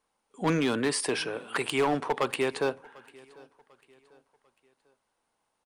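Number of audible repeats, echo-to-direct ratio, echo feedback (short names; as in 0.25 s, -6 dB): 2, -23.5 dB, 40%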